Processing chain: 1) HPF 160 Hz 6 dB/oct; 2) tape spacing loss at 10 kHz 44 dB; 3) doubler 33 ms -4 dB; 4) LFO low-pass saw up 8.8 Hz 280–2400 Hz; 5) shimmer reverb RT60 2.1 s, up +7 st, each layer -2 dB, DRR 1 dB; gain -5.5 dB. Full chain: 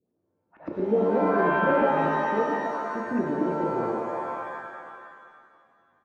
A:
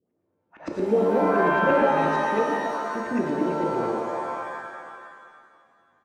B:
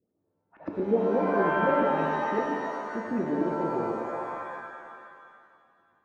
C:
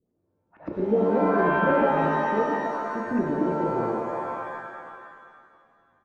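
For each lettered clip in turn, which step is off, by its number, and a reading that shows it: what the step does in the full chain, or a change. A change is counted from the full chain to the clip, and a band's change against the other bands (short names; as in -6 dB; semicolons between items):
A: 2, 4 kHz band +4.0 dB; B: 3, loudness change -2.5 LU; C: 1, 125 Hz band +2.0 dB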